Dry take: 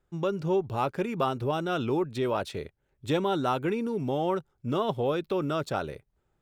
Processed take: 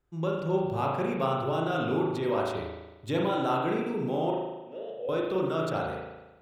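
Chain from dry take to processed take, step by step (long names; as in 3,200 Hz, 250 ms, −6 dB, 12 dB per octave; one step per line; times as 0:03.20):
0:04.30–0:05.09: formant filter e
spring reverb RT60 1.1 s, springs 37 ms, chirp 50 ms, DRR −2 dB
level −4 dB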